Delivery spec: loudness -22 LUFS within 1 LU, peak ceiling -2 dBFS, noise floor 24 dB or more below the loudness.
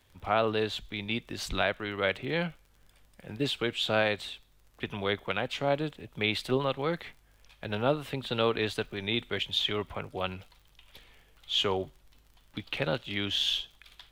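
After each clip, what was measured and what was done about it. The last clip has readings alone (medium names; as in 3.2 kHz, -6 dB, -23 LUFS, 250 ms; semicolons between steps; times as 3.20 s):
tick rate 39 per s; loudness -31.0 LUFS; peak level -13.5 dBFS; loudness target -22.0 LUFS
-> de-click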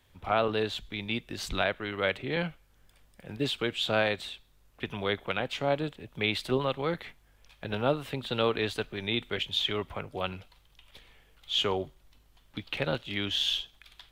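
tick rate 0.071 per s; loudness -31.0 LUFS; peak level -13.5 dBFS; loudness target -22.0 LUFS
-> trim +9 dB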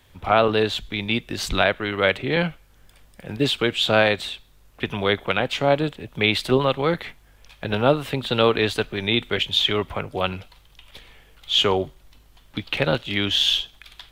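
loudness -22.0 LUFS; peak level -4.5 dBFS; noise floor -54 dBFS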